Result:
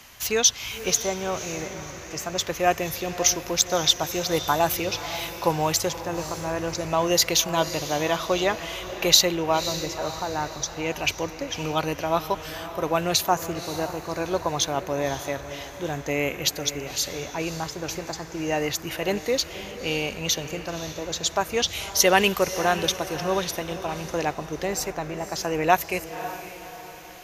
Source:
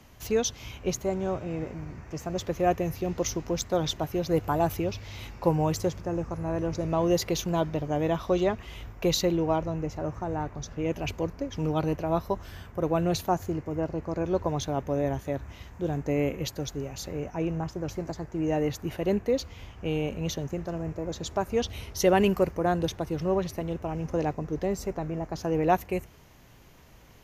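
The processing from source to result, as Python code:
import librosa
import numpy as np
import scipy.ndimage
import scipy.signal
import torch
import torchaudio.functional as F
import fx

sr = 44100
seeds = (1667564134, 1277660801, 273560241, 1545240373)

y = fx.tilt_shelf(x, sr, db=-9.0, hz=760.0)
y = fx.echo_diffused(y, sr, ms=546, feedback_pct=44, wet_db=-12)
y = F.gain(torch.from_numpy(y), 4.5).numpy()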